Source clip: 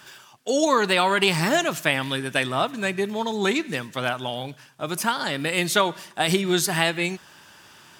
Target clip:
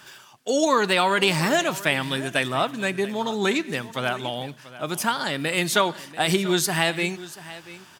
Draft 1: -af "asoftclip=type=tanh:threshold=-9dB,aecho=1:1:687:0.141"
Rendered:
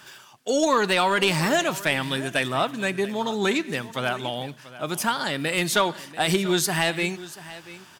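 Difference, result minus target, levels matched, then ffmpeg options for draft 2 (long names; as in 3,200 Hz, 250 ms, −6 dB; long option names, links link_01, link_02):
soft clipping: distortion +12 dB
-af "asoftclip=type=tanh:threshold=-1.5dB,aecho=1:1:687:0.141"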